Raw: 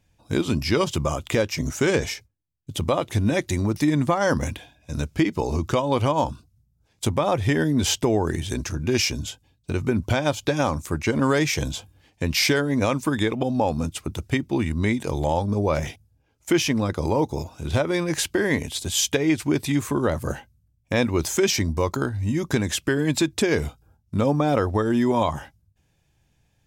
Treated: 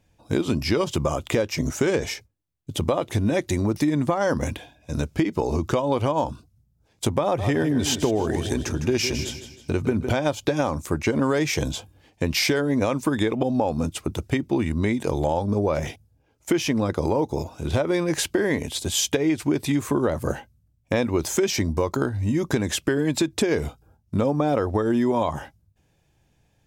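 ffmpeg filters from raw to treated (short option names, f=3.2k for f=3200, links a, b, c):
-filter_complex "[0:a]asettb=1/sr,asplit=3[a][b][c];[a]atrim=end=7.234[d];[b]atrim=start=7.23:end=10.13,asetpts=PTS-STARTPTS,afade=t=in:d=0.004:c=qsin,afade=t=out:st=2.896:d=0.004:c=qsin,aecho=1:1:157|314|471|628:0.282|0.11|0.0429|0.0167,atrim=end_sample=127890[e];[c]atrim=start=10.126[f];[d][e]acrossfade=d=0.004:c1=hsin:c2=qsin[g];[g][f]acrossfade=d=0.004:c1=qsin:c2=hsin,equalizer=f=470:w=0.54:g=5,acompressor=threshold=-18dB:ratio=6"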